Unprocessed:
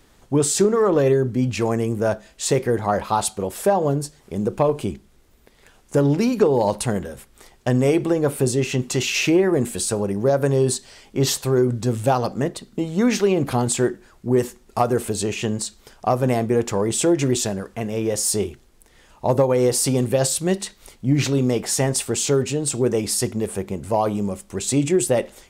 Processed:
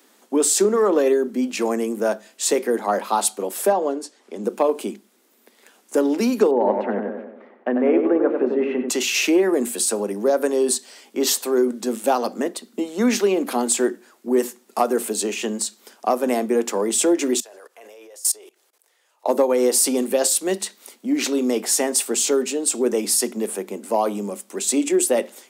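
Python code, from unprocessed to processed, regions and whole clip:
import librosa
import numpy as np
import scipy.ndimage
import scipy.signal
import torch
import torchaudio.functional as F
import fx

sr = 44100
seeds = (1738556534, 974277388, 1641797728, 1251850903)

y = fx.chain(x, sr, fx.highpass(hz=240.0, slope=6),
    fx.air_absorb(metres=67.0), at=(3.72, 4.44))
y = fx.chain(y, sr, fx.lowpass(hz=2100.0, slope=24),
    fx.notch(hz=1000.0, q=25.0),
    fx.echo_tape(ms=94, feedback_pct=58, wet_db=-3.0, lp_hz=1500.0, drive_db=9.0, wow_cents=27), at=(6.51, 8.89))
y = fx.chain(y, sr, fx.highpass(hz=460.0, slope=24),
    fx.level_steps(step_db=22), at=(17.4, 19.28))
y = scipy.signal.sosfilt(scipy.signal.butter(12, 210.0, 'highpass', fs=sr, output='sos'), y)
y = fx.high_shelf(y, sr, hz=10000.0, db=9.5)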